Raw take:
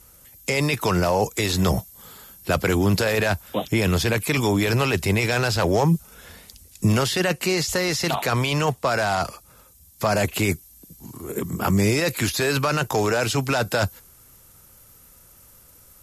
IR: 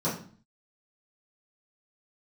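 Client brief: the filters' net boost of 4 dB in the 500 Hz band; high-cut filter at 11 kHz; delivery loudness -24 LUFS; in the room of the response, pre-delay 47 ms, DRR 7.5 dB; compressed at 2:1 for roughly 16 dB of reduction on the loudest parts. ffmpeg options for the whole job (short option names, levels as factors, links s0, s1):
-filter_complex "[0:a]lowpass=11000,equalizer=f=500:t=o:g=5,acompressor=threshold=0.00562:ratio=2,asplit=2[s0][s1];[1:a]atrim=start_sample=2205,adelay=47[s2];[s1][s2]afir=irnorm=-1:irlink=0,volume=0.133[s3];[s0][s3]amix=inputs=2:normalize=0,volume=3.16"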